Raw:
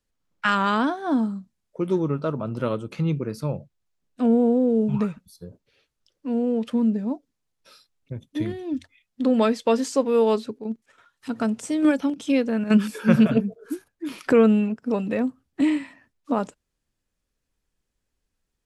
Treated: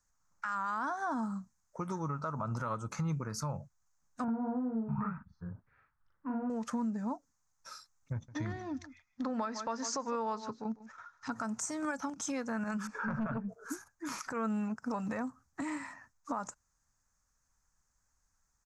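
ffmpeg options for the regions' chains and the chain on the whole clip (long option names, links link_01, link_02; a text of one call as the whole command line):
ffmpeg -i in.wav -filter_complex "[0:a]asettb=1/sr,asplit=3[link_01][link_02][link_03];[link_01]atrim=end=4.244[link_04];[link_02]atrim=start=4.24:end=6.5,asetpts=PTS-STARTPTS,afade=type=in:duration=0.004:curve=qsin,afade=type=out:start_time=2.256:duration=0.004:curve=qsin,lowpass=frequency=2000:width=0.5412,lowpass=frequency=2000:width=1.3066,equalizer=frequency=530:width_type=o:width=0.9:gain=-9.5,asplit=2[link_05][link_06];[link_06]adelay=40,volume=-2dB[link_07];[link_05][link_07]amix=inputs=2:normalize=0,atrim=end_sample=99666[link_08];[link_03]atrim=start=6.496[link_09];[link_04][link_08]acrossfade=duration=0.004:curve1=hsin:curve2=qsin[link_10];[link_10][link_09]acrossfade=duration=0.004:curve1=qsin:curve2=hsin,asettb=1/sr,asplit=3[link_11][link_12][link_13];[link_11]atrim=end=8.134[link_14];[link_12]atrim=start=8.13:end=11.32,asetpts=PTS-STARTPTS,afade=type=in:duration=0.004:curve=qsin,afade=type=out:start_time=3.186:duration=0.004:curve=qsin,lowpass=frequency=5400:width=0.5412,lowpass=frequency=5400:width=1.3066,aecho=1:1:151:0.119,atrim=end_sample=140679[link_15];[link_13]atrim=start=11.316[link_16];[link_14][link_15]acrossfade=duration=0.004:curve1=hsin:curve2=qsin[link_17];[link_17][link_16]acrossfade=duration=0.004:curve1=qsin:curve2=hsin,asettb=1/sr,asplit=3[link_18][link_19][link_20];[link_18]atrim=end=12.874[link_21];[link_19]atrim=start=12.87:end=13.49,asetpts=PTS-STARTPTS,afade=type=in:duration=0.004:curve=qsin,afade=type=out:start_time=0.616:duration=0.004:curve=qsin,lowpass=1900,aeval=exprs='(tanh(3.55*val(0)+0.15)-tanh(0.15))/3.55':channel_layout=same[link_22];[link_20]atrim=start=13.486[link_23];[link_21][link_22]acrossfade=duration=0.004:curve1=hsin:curve2=qsin[link_24];[link_24][link_23]acrossfade=duration=0.004:curve1=qsin:curve2=hsin,acompressor=threshold=-27dB:ratio=4,firequalizer=gain_entry='entry(100,0);entry(370,-12);entry(860,6);entry(1300,8);entry(3000,-13);entry(6400,13);entry(9300,-2)':delay=0.05:min_phase=1,alimiter=level_in=2.5dB:limit=-24dB:level=0:latency=1:release=107,volume=-2.5dB" out.wav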